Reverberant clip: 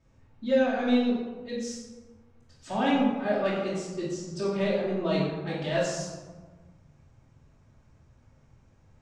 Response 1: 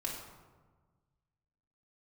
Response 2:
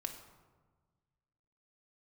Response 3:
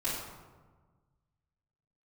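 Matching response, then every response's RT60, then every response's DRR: 3; 1.4, 1.4, 1.4 seconds; −3.0, 4.5, −11.0 decibels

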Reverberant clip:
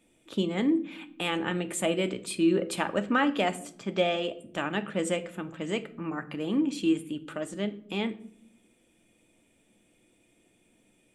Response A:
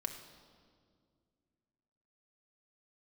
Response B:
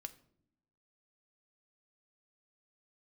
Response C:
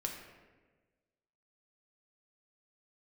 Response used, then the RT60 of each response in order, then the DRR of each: B; 2.1 s, non-exponential decay, 1.3 s; 4.0, 8.0, 1.0 decibels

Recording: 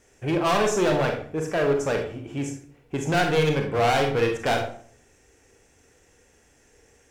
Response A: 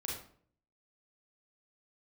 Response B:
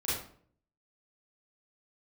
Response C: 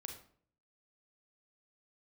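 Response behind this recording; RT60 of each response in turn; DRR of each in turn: C; 0.55, 0.55, 0.55 seconds; −3.5, −10.5, 3.5 decibels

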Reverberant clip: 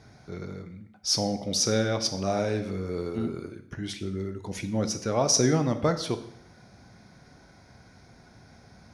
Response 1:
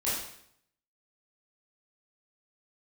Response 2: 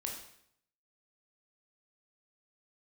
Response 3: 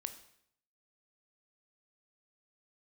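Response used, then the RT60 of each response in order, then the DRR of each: 3; 0.70, 0.70, 0.70 seconds; −9.5, 0.0, 8.5 decibels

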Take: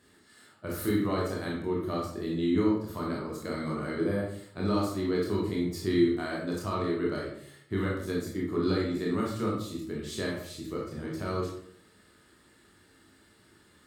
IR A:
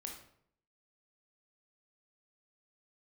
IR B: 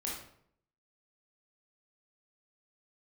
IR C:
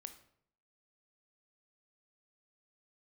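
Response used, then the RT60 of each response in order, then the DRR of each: B; 0.65, 0.65, 0.65 seconds; 1.0, −4.0, 8.5 decibels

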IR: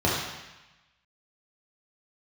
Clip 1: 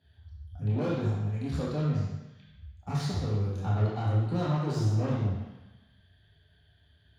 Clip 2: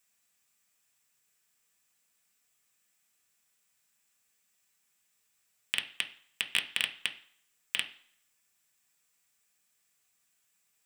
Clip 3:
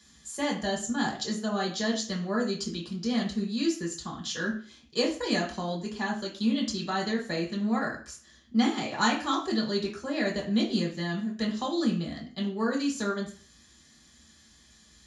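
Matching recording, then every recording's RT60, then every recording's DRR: 1; 1.0, 0.55, 0.40 seconds; −6.0, 5.0, −3.5 decibels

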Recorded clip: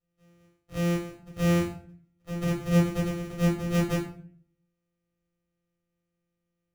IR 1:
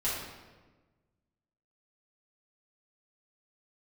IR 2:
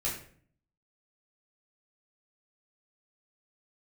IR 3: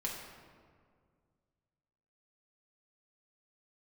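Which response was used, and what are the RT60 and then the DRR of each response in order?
2; 1.3, 0.50, 2.0 seconds; −10.0, −7.0, −4.0 decibels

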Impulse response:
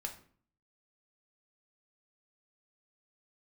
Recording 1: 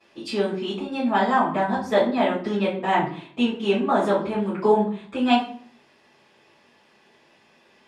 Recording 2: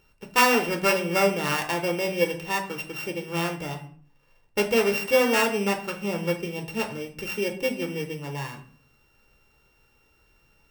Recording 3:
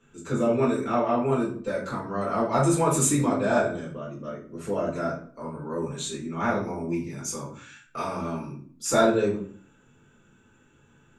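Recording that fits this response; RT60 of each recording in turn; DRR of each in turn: 2; 0.50, 0.50, 0.50 seconds; −16.5, 3.0, −7.0 decibels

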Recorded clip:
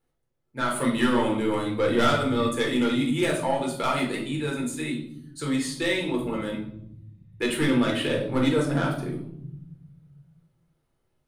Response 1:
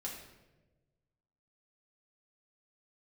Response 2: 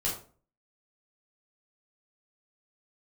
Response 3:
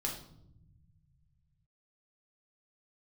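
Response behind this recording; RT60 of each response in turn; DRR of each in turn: 3; 1.2, 0.40, 0.75 seconds; −3.5, −5.0, −1.5 decibels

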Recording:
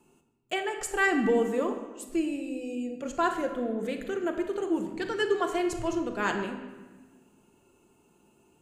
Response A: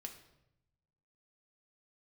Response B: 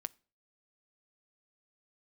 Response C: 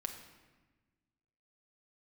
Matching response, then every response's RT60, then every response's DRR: C; 0.85 s, non-exponential decay, 1.3 s; 3.0, 13.5, 4.0 decibels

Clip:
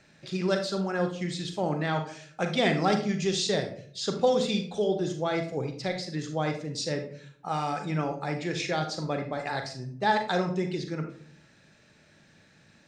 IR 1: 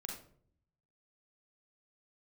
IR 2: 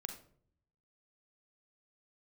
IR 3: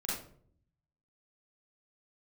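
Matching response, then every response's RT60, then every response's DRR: 2; 0.60, 0.60, 0.55 seconds; 0.0, 5.5, −7.5 decibels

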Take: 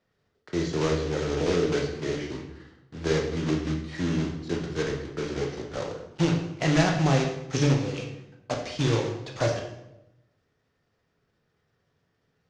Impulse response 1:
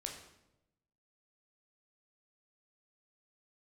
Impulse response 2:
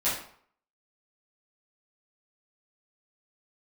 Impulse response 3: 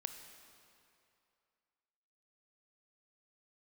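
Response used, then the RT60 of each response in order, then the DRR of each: 1; 0.90, 0.55, 2.6 seconds; 1.0, −11.5, 7.0 decibels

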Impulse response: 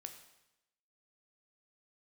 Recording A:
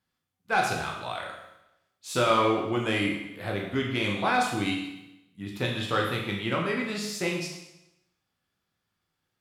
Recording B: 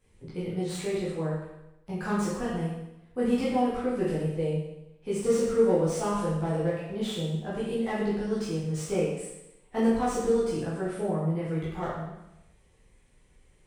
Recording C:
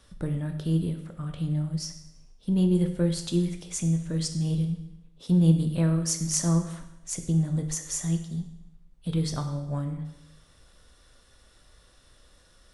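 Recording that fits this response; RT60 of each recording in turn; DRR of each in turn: C; 0.90, 0.90, 0.90 seconds; −1.5, −9.5, 5.5 decibels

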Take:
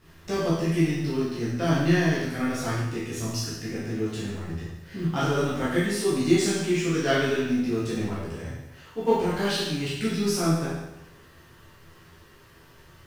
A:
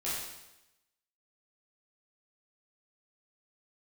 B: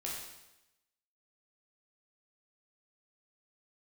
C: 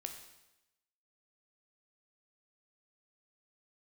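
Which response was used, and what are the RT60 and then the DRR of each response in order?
A; 0.95, 0.95, 0.95 seconds; −10.0, −4.5, 4.5 decibels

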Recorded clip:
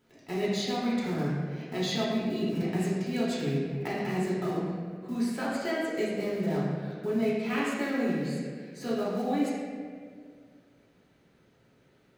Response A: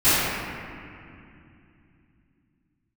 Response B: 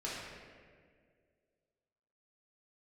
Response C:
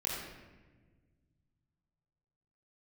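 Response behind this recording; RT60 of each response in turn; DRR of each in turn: B; 2.6, 2.0, 1.4 seconds; −21.5, −8.0, −5.5 decibels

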